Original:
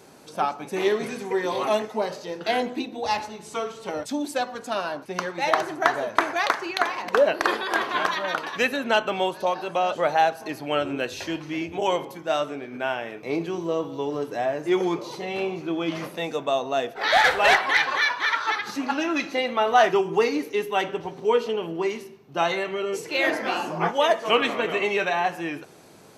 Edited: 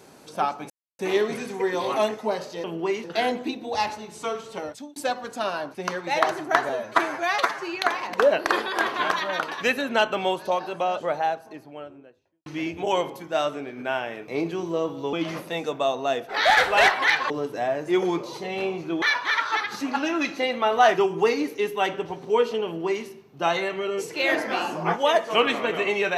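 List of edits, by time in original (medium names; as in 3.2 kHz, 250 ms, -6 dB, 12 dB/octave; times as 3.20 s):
0.70 s: insert silence 0.29 s
3.82–4.27 s: fade out
6.00–6.72 s: stretch 1.5×
9.31–11.41 s: studio fade out
14.08–15.80 s: move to 17.97 s
21.60–22.00 s: copy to 2.35 s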